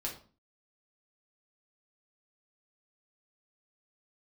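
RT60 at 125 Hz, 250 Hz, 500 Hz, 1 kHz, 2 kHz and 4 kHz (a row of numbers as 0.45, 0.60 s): 0.50, 0.55, 0.40, 0.40, 0.30, 0.30 s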